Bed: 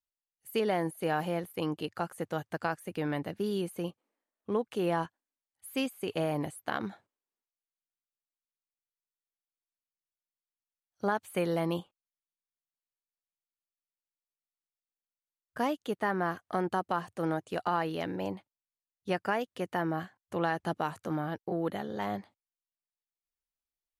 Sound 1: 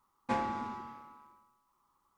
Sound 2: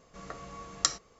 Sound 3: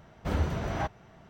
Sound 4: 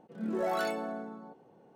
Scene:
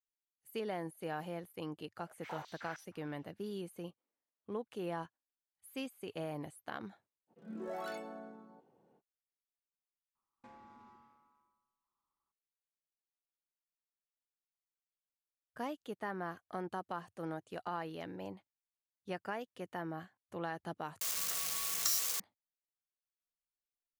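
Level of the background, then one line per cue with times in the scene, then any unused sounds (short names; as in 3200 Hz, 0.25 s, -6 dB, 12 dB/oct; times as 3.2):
bed -10 dB
1.98 add 3 -14 dB + stepped high-pass 6.4 Hz 610–5600 Hz
7.27 add 4 -10.5 dB, fades 0.05 s
10.15 replace with 1 -17.5 dB + compressor 3:1, threshold -37 dBFS
21.01 replace with 2 -14 dB + switching spikes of -11 dBFS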